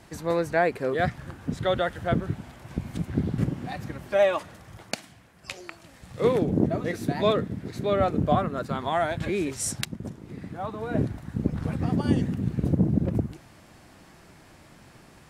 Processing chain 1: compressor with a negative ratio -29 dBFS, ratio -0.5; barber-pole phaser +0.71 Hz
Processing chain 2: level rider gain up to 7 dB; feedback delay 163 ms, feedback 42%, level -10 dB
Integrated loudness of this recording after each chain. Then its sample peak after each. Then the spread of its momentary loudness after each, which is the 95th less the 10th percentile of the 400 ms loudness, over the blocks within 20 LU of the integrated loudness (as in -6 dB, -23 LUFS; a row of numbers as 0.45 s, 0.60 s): -34.5 LUFS, -20.5 LUFS; -10.5 dBFS, -2.5 dBFS; 18 LU, 15 LU